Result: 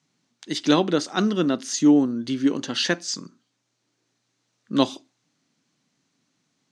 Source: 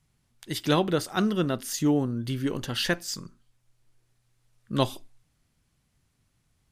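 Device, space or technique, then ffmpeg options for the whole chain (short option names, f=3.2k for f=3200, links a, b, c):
television speaker: -af "highpass=f=170:w=0.5412,highpass=f=170:w=1.3066,equalizer=f=280:t=q:w=4:g=7,equalizer=f=4.1k:t=q:w=4:g=4,equalizer=f=6.2k:t=q:w=4:g=6,lowpass=f=7.4k:w=0.5412,lowpass=f=7.4k:w=1.3066,volume=2.5dB"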